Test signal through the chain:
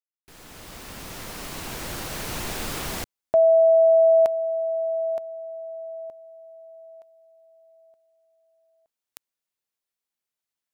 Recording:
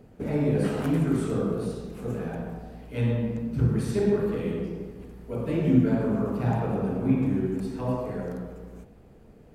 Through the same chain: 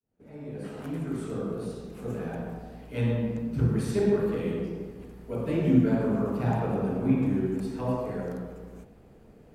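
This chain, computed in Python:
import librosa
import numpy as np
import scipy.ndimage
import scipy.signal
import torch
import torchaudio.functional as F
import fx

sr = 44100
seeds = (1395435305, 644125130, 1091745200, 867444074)

y = fx.fade_in_head(x, sr, length_s=2.51)
y = fx.low_shelf(y, sr, hz=120.0, db=-3.5)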